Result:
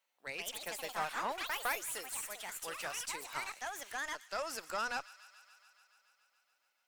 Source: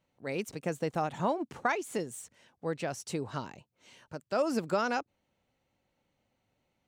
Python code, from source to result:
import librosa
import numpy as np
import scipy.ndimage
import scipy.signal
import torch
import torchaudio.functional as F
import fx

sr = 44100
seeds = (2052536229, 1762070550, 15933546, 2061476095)

p1 = scipy.signal.sosfilt(scipy.signal.butter(2, 1000.0, 'highpass', fs=sr, output='sos'), x)
p2 = fx.high_shelf(p1, sr, hz=9600.0, db=10.0)
p3 = fx.tube_stage(p2, sr, drive_db=29.0, bias=0.5)
p4 = p3 + fx.echo_wet_highpass(p3, sr, ms=142, feedback_pct=77, hz=1800.0, wet_db=-16, dry=0)
p5 = fx.echo_pitch(p4, sr, ms=184, semitones=4, count=3, db_per_echo=-3.0)
y = p5 * librosa.db_to_amplitude(1.0)